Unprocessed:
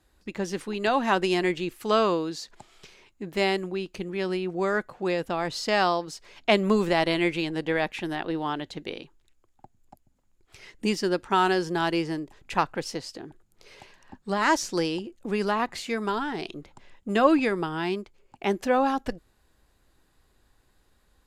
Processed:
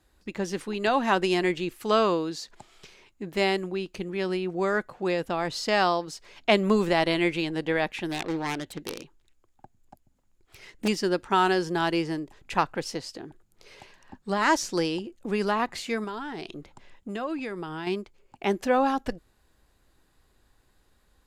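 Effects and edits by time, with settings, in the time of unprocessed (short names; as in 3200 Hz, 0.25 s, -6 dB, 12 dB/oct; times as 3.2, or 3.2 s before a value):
8.11–10.88 self-modulated delay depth 0.41 ms
16.04–17.87 compressor 2.5:1, threshold -34 dBFS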